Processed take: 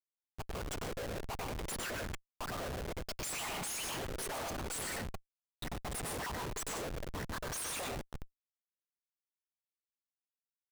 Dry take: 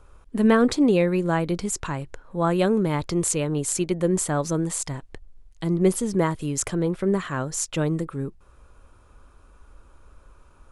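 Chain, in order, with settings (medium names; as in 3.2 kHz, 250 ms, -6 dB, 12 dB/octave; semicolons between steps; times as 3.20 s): random holes in the spectrogram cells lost 64%; dynamic bell 2 kHz, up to +3 dB, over -48 dBFS, Q 1.6; whisper effect; compression 4:1, threshold -38 dBFS, peak gain reduction 20.5 dB; peak limiter -31.5 dBFS, peak gain reduction 7 dB; high-pass 550 Hz 24 dB/octave; treble shelf 7.4 kHz +8.5 dB; plate-style reverb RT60 0.82 s, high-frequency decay 0.85×, pre-delay 85 ms, DRR 3.5 dB; Schmitt trigger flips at -45 dBFS; trim +6.5 dB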